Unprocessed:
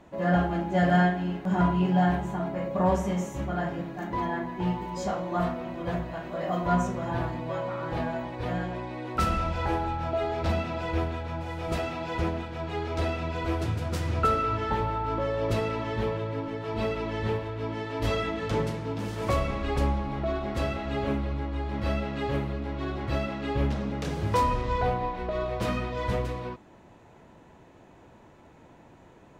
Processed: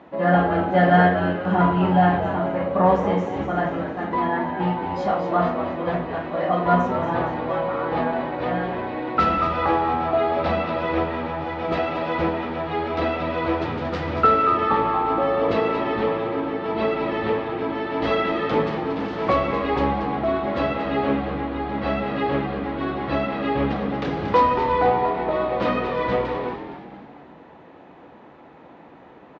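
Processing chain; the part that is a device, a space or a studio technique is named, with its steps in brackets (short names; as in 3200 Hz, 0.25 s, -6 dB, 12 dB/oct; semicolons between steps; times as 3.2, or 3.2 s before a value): frequency-shifting delay pedal into a guitar cabinet (frequency-shifting echo 0.232 s, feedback 49%, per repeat -87 Hz, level -8.5 dB; speaker cabinet 110–4200 Hz, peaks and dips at 110 Hz -10 dB, 290 Hz +4 dB, 490 Hz +4 dB, 780 Hz +5 dB, 1200 Hz +5 dB, 1900 Hz +3 dB); gain +4.5 dB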